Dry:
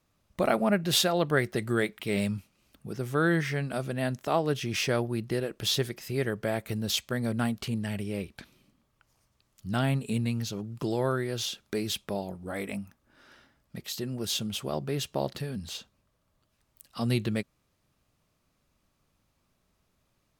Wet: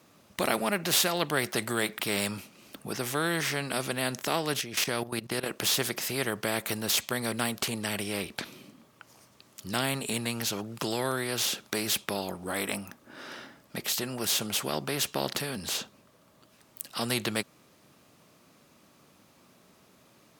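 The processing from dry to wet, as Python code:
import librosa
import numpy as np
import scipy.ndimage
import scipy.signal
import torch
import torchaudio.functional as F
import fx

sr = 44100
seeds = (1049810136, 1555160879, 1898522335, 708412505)

y = fx.level_steps(x, sr, step_db=15, at=(4.61, 5.46))
y = scipy.signal.sosfilt(scipy.signal.butter(2, 240.0, 'highpass', fs=sr, output='sos'), y)
y = fx.low_shelf(y, sr, hz=350.0, db=7.0)
y = fx.spectral_comp(y, sr, ratio=2.0)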